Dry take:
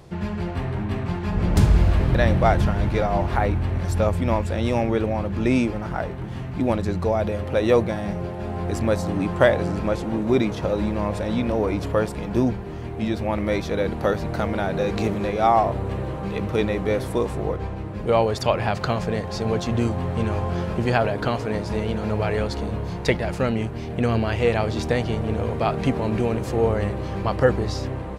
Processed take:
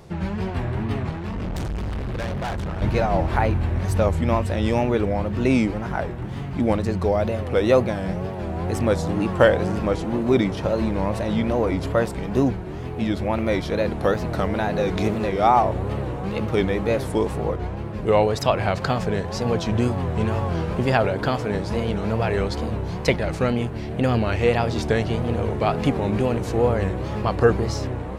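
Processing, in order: wow and flutter 140 cents; 1.09–2.82 s: valve stage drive 26 dB, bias 0.45; trim +1 dB

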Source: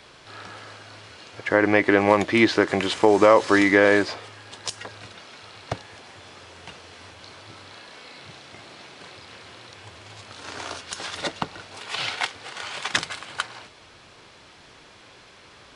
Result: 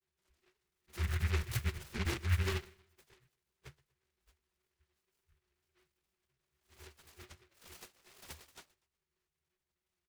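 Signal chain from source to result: short-time spectra conjugated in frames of 59 ms; spectral noise reduction 17 dB; treble shelf 2.5 kHz +6 dB; chorus voices 2, 0.55 Hz, delay 12 ms, depth 5 ms; time stretch by phase-locked vocoder 0.64×; touch-sensitive flanger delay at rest 5.2 ms, full sweep at -21 dBFS; pitch-class resonator D, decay 0.13 s; frequency shift -220 Hz; feedback delay 121 ms, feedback 37%, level -22 dB; delay time shaken by noise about 1.8 kHz, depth 0.36 ms

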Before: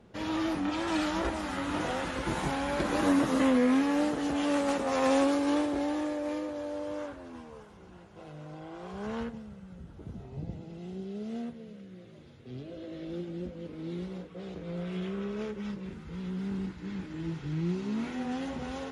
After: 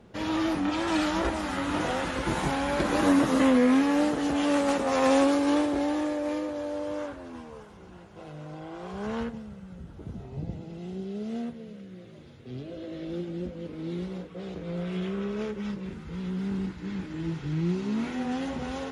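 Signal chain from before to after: trim +3.5 dB

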